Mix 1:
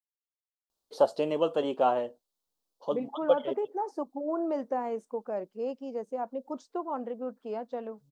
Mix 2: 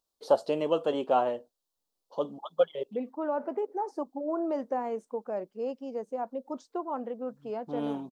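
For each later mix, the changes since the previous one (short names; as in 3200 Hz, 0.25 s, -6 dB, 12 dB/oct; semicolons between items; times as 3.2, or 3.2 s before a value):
first voice: entry -0.70 s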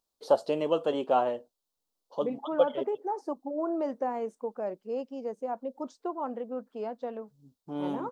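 second voice: entry -0.70 s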